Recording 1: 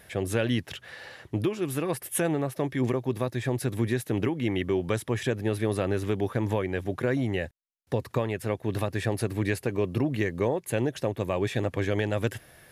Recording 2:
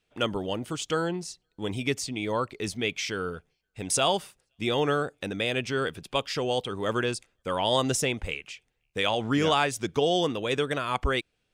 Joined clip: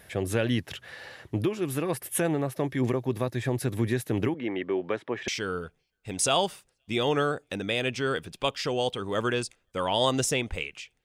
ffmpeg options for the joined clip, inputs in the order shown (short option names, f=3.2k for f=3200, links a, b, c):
-filter_complex "[0:a]asettb=1/sr,asplit=3[a][b][c];[a]atrim=end=4.344[d];[b]atrim=start=4.34:end=5.28,asetpts=PTS-STARTPTS,afade=t=in:d=0.004:c=qsin,afade=t=out:st=0.936:d=0.004:c=qsin,highpass=290,lowpass=2.5k[e];[c]atrim=start=5.276[f];[d][e]acrossfade=d=0.004:c1=hsin:c2=qsin[g];[g][f]acrossfade=d=0.004:c1=qsin:c2=hsin,apad=whole_dur=11.04,atrim=end=11.04,atrim=end=5.282[h];[1:a]atrim=start=2.988:end=8.75[i];[h][i]acrossfade=d=0.004:c1=hsin:c2=hsin"